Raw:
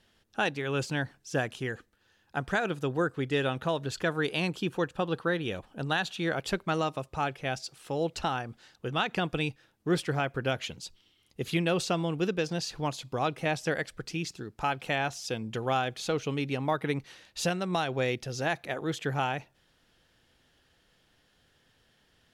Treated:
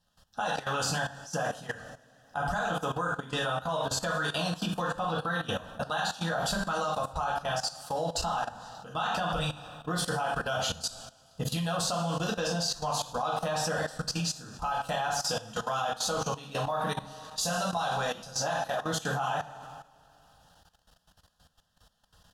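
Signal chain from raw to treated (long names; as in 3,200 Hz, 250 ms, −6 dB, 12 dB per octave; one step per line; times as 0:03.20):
phaser with its sweep stopped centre 910 Hz, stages 4
far-end echo of a speakerphone 90 ms, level −24 dB
harmonic and percussive parts rebalanced percussive +9 dB
coupled-rooms reverb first 0.48 s, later 2.4 s, DRR −4 dB
output level in coarse steps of 15 dB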